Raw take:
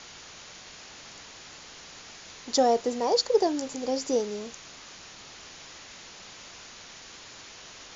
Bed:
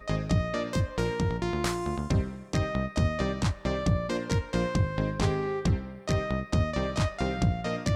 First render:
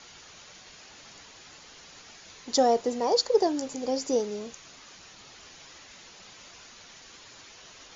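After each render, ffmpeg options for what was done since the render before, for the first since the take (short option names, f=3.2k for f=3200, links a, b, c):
-af "afftdn=nr=6:nf=-47"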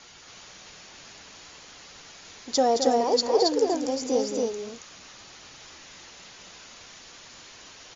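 -af "aecho=1:1:218.7|274.1:0.398|0.794"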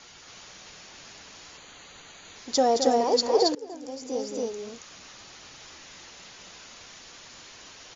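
-filter_complex "[0:a]asettb=1/sr,asplit=3[a][b][c];[a]atrim=end=1.574[d];[b]atrim=start=1.57:end=2.36,asetpts=PTS-STARTPTS,afade=t=in:d=0.004:c=qsin,afade=t=out:st=0.786:d=0.004:c=qsin,asuperstop=centerf=5300:order=4:qfactor=3.9[e];[c]atrim=start=2.356[f];[d][e]acrossfade=d=0.004:c1=hsin:c2=qsin[g];[g][f]acrossfade=d=0.004:c1=qsin:c2=hsin,asplit=2[h][i];[h]atrim=end=3.55,asetpts=PTS-STARTPTS,afade=t=out:st=3.546:d=0.004:c=hsin:silence=0.0891251[j];[i]atrim=start=3.55,asetpts=PTS-STARTPTS,afade=t=in:d=1.38:silence=0.0891251[k];[j][k]concat=n=2:v=0:a=1"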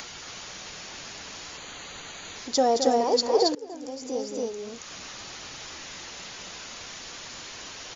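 -af "acompressor=mode=upward:threshold=-32dB:ratio=2.5"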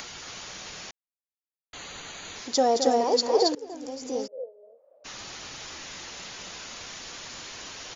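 -filter_complex "[0:a]asettb=1/sr,asplit=3[a][b][c];[a]atrim=end=2.414[d];[b]atrim=start=2.41:end=3.57,asetpts=PTS-STARTPTS,afade=t=in:d=0.004:c=qsin,afade=t=out:st=1.156:d=0.004:c=qsin,highpass=f=110:p=1[e];[c]atrim=start=3.566[f];[d][e]acrossfade=d=0.004:c1=hsin:c2=qsin[g];[g][f]acrossfade=d=0.004:c1=qsin:c2=hsin,asplit=3[h][i][j];[h]afade=t=out:st=4.26:d=0.02[k];[i]asuperpass=centerf=560:order=4:qfactor=4.7,afade=t=in:st=4.26:d=0.02,afade=t=out:st=5.04:d=0.02[l];[j]afade=t=in:st=5.04:d=0.02[m];[k][l][m]amix=inputs=3:normalize=0,asplit=3[n][o][p];[n]atrim=end=0.91,asetpts=PTS-STARTPTS,afade=t=out:st=0.906:d=0.004:c=hsin[q];[o]atrim=start=0.91:end=1.73,asetpts=PTS-STARTPTS,volume=0[r];[p]atrim=start=1.73,asetpts=PTS-STARTPTS,afade=t=in:d=0.004:c=hsin[s];[q][r][s]concat=n=3:v=0:a=1"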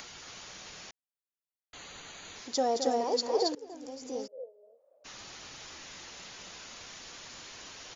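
-af "volume=-6.5dB"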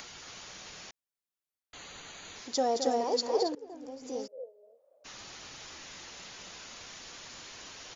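-filter_complex "[0:a]asettb=1/sr,asplit=3[a][b][c];[a]atrim=end=3.434[d];[b]atrim=start=3.43:end=4.04,asetpts=PTS-STARTPTS,afade=t=in:d=0.004:c=qsin,afade=t=out:st=0.606:d=0.004:c=qsin,highshelf=f=2.9k:g=-10.5[e];[c]atrim=start=4.036[f];[d][e]acrossfade=d=0.004:c1=hsin:c2=qsin[g];[g][f]acrossfade=d=0.004:c1=qsin:c2=hsin"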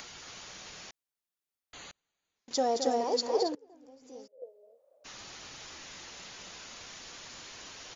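-filter_complex "[0:a]asettb=1/sr,asplit=3[a][b][c];[a]atrim=end=1.914[d];[b]atrim=start=1.91:end=2.51,asetpts=PTS-STARTPTS,afade=t=in:d=0.004:c=qsin,afade=t=out:st=0.596:d=0.004:c=qsin,agate=range=-38dB:threshold=-42dB:ratio=16:release=100:detection=peak[e];[c]atrim=start=2.506[f];[d][e]acrossfade=d=0.004:c1=hsin:c2=qsin[g];[g][f]acrossfade=d=0.004:c1=qsin:c2=hsin,asplit=3[h][i][j];[h]atrim=end=3.562[k];[i]atrim=start=3.558:end=4.422,asetpts=PTS-STARTPTS,volume=-11dB[l];[j]atrim=start=4.418[m];[k][l]acrossfade=d=0.004:c1=hsin:c2=hsin[n];[n][m]acrossfade=d=0.004:c1=hsin:c2=hsin"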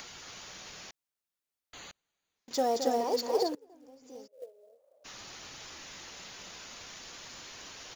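-filter_complex "[0:a]acrossover=split=2600[a][b];[b]volume=32dB,asoftclip=hard,volume=-32dB[c];[a][c]amix=inputs=2:normalize=0,acrusher=bits=6:mode=log:mix=0:aa=0.000001"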